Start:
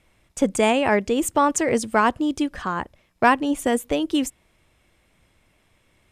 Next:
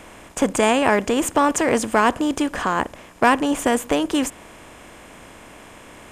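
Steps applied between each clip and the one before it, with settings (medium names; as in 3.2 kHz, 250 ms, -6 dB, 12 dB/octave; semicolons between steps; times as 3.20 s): spectral levelling over time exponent 0.6; trim -1 dB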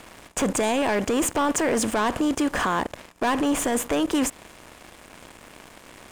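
waveshaping leveller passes 3; peak limiter -10 dBFS, peak gain reduction 8.5 dB; trim -6.5 dB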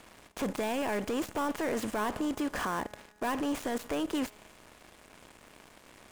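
dead-time distortion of 0.062 ms; feedback comb 210 Hz, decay 1.6 s, mix 50%; trim -3 dB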